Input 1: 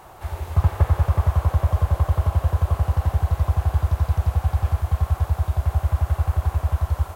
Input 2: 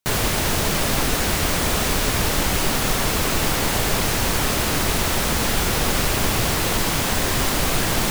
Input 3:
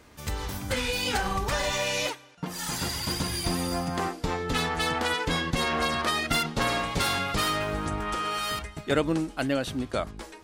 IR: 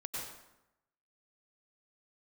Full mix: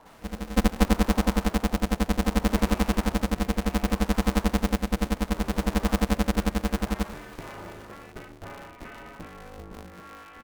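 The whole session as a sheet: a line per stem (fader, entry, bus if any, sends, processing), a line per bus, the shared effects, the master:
−3.5 dB, 0.00 s, no send, no processing
−14.5 dB, 0.00 s, no send, four-pole ladder high-pass 720 Hz, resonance 35%
−10.0 dB, 1.85 s, no send, Butterworth low-pass 2,700 Hz 48 dB per octave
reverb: not used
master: high-shelf EQ 2,100 Hz −11.5 dB; rotating-speaker cabinet horn 0.65 Hz; ring modulator with a square carrier 130 Hz

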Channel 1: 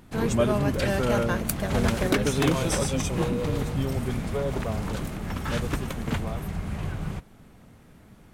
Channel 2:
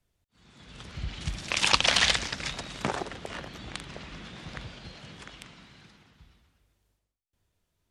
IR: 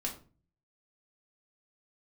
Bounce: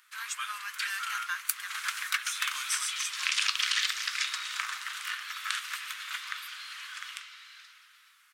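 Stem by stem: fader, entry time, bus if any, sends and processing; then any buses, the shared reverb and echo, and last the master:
0.0 dB, 0.00 s, no send, no processing
+1.5 dB, 1.75 s, send −3.5 dB, downward compressor 6 to 1, threshold −30 dBFS, peak gain reduction 14 dB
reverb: on, RT60 0.35 s, pre-delay 4 ms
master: Butterworth high-pass 1,200 Hz 48 dB per octave

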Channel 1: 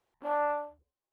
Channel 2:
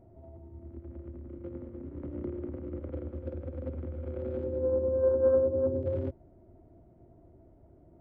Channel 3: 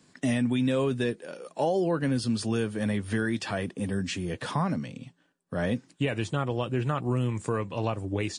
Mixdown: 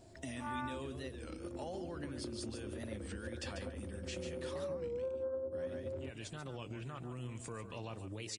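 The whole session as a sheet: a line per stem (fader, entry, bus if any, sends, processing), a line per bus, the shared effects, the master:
−6.5 dB, 0.15 s, no bus, no send, no echo send, inverse Chebyshev high-pass filter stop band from 210 Hz, stop band 70 dB
+2.0 dB, 0.00 s, bus A, no send, no echo send, no processing
−4.0 dB, 0.00 s, bus A, no send, echo send −11.5 dB, parametric band 830 Hz −5.5 dB 2.9 octaves; brickwall limiter −26 dBFS, peak gain reduction 9 dB
bus A: 0.0 dB, downward compressor 6 to 1, threshold −35 dBFS, peak gain reduction 15.5 dB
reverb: not used
echo: single-tap delay 143 ms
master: low-shelf EQ 440 Hz −7 dB; wow of a warped record 33 1/3 rpm, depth 160 cents

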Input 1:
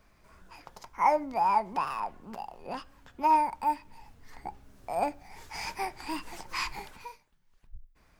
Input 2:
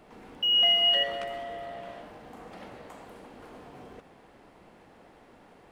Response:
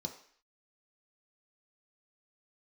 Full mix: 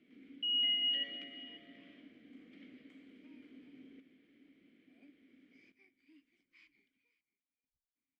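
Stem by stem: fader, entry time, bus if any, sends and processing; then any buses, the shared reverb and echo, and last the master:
−18.5 dB, 0.00 s, no send, echo send −20 dB, no processing
+1.0 dB, 0.00 s, no send, echo send −18.5 dB, no processing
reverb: not used
echo: single-tap delay 536 ms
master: formant filter i

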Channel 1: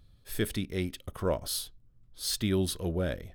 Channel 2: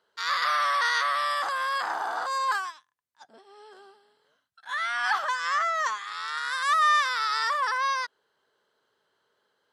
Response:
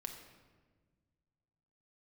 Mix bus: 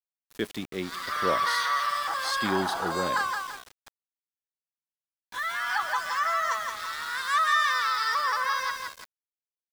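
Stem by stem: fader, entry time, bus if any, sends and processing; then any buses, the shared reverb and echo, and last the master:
+1.0 dB, 0.00 s, no send, echo send −23 dB, three-way crossover with the lows and the highs turned down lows −19 dB, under 170 Hz, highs −17 dB, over 7,600 Hz
−13.0 dB, 0.65 s, no send, echo send −4.5 dB, comb filter 6.1 ms, depth 40%; automatic gain control gain up to 14 dB; reverb reduction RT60 0.92 s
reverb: not used
echo: repeating echo 169 ms, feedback 43%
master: centre clipping without the shift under −38 dBFS

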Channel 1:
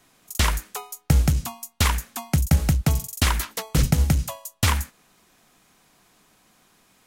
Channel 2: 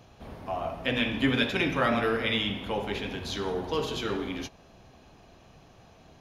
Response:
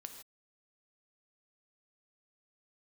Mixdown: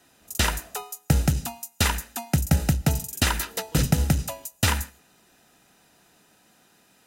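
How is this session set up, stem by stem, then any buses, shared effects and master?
0.0 dB, 0.00 s, send −10.5 dB, notch comb filter 1,100 Hz
−19.5 dB, 0.00 s, muted 0:00.84–0:03.09, no send, no processing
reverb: on, pre-delay 3 ms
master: no processing

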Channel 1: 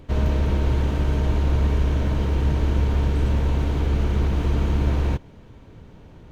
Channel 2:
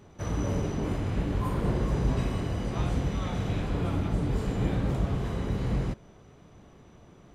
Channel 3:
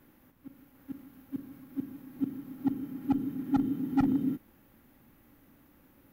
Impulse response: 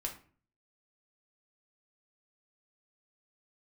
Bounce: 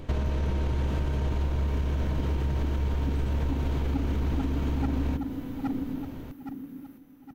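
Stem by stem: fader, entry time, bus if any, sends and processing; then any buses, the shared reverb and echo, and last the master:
+2.0 dB, 0.00 s, send −10 dB, no echo send, brickwall limiter −18.5 dBFS, peak gain reduction 8.5 dB
−12.0 dB, 0.00 s, no send, no echo send, phases set to zero 249 Hz
+2.0 dB, 0.85 s, no send, echo send −6.5 dB, no processing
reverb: on, RT60 0.45 s, pre-delay 3 ms
echo: repeating echo 817 ms, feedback 39%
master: downward compressor, threshold −24 dBFS, peak gain reduction 9 dB

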